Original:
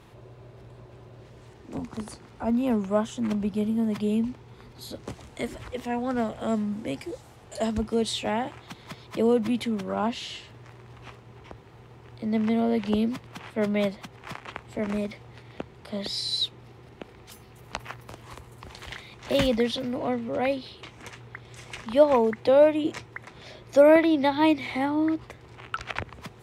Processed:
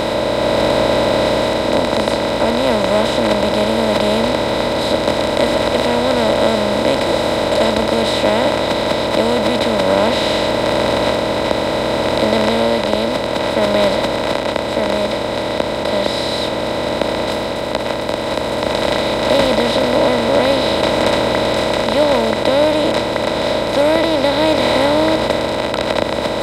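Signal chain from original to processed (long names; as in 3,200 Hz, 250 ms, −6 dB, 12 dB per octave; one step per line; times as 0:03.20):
compressor on every frequency bin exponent 0.2
automatic gain control
level −1 dB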